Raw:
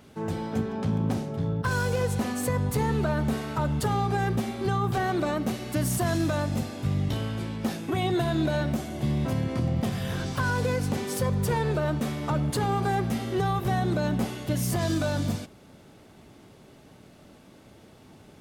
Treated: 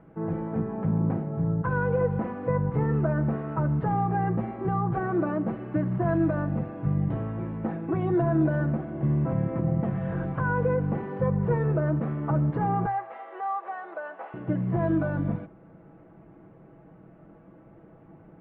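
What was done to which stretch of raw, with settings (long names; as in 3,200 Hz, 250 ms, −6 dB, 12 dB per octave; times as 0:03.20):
0:12.86–0:14.34: high-pass filter 610 Hz 24 dB per octave
whole clip: Bessel low-pass filter 1,200 Hz, order 6; mains-hum notches 60/120 Hz; comb filter 6.1 ms, depth 61%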